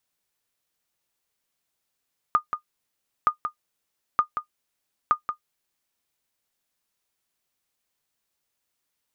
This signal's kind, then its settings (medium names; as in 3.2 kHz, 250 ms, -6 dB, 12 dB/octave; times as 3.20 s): sonar ping 1.22 kHz, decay 0.10 s, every 0.92 s, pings 4, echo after 0.18 s, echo -8.5 dB -9.5 dBFS